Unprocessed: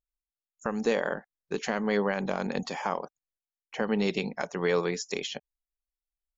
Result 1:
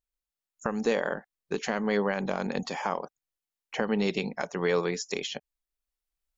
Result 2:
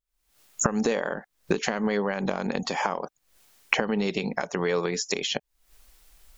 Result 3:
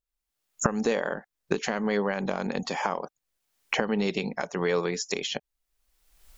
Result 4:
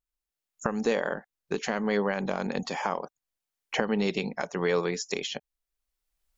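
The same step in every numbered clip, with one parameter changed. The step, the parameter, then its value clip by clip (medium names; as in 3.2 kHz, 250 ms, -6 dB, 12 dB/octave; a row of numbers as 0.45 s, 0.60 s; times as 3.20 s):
recorder AGC, rising by: 5.3 dB/s, 89 dB/s, 36 dB/s, 14 dB/s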